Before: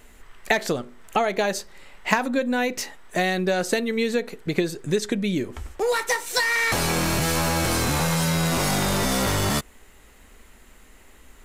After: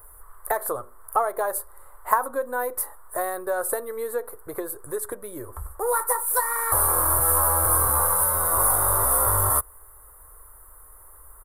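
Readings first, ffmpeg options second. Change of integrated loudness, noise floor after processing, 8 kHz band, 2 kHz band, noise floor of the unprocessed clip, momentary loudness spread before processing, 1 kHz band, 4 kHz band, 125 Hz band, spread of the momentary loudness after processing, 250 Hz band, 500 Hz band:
+1.5 dB, -49 dBFS, +6.5 dB, -8.5 dB, -51 dBFS, 6 LU, +2.5 dB, -22.0 dB, -6.5 dB, 15 LU, -16.0 dB, -3.0 dB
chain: -af "firequalizer=gain_entry='entry(100,0);entry(180,-30);entry(290,-13);entry(510,-1);entry(740,-3);entry(1100,8);entry(2500,-29);entry(3900,-21);entry(6200,-22);entry(9700,14)':delay=0.05:min_phase=1"

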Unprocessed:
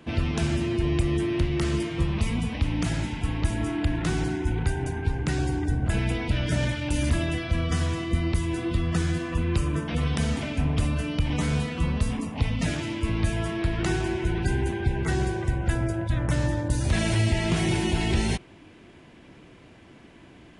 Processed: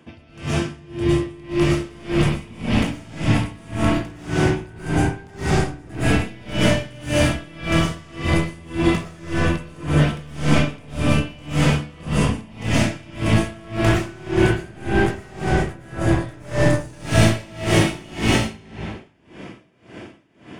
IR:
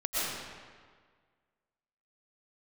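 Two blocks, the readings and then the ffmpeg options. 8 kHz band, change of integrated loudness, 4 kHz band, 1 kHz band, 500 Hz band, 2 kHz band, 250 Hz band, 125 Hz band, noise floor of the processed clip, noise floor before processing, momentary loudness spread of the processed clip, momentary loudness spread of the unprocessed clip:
+5.0 dB, +5.0 dB, +6.0 dB, +8.0 dB, +7.5 dB, +7.0 dB, +6.0 dB, +3.5 dB, -48 dBFS, -51 dBFS, 9 LU, 3 LU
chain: -filter_complex "[0:a]highpass=81,bandreject=f=4000:w=8.2,dynaudnorm=f=960:g=3:m=2.11,volume=8.91,asoftclip=hard,volume=0.112[s0];[1:a]atrim=start_sample=2205[s1];[s0][s1]afir=irnorm=-1:irlink=0,aeval=exprs='val(0)*pow(10,-26*(0.5-0.5*cos(2*PI*1.8*n/s))/20)':c=same"

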